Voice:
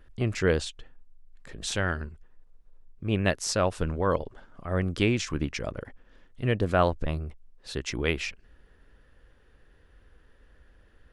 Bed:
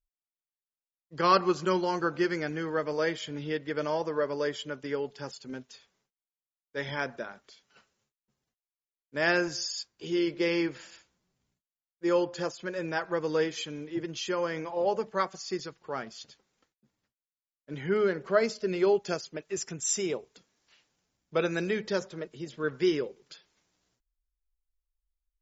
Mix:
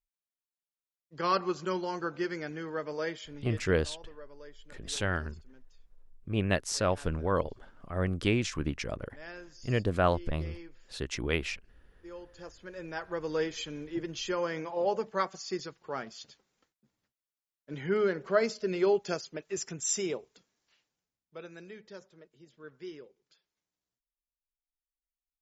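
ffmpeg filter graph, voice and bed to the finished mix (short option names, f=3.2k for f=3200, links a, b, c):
-filter_complex "[0:a]adelay=3250,volume=-3dB[a];[1:a]volume=13dB,afade=t=out:st=3.08:d=0.74:silence=0.188365,afade=t=in:st=12.24:d=1.49:silence=0.11885,afade=t=out:st=19.99:d=1.25:silence=0.158489[b];[a][b]amix=inputs=2:normalize=0"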